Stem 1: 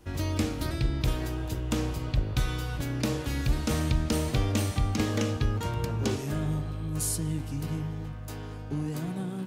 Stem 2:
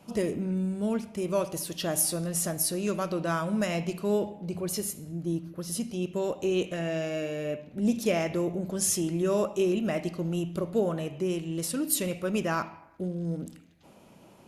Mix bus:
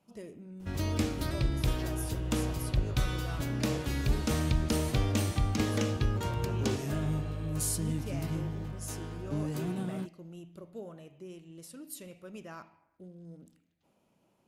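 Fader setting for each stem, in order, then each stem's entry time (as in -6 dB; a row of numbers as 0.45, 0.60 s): -2.0, -17.0 dB; 0.60, 0.00 s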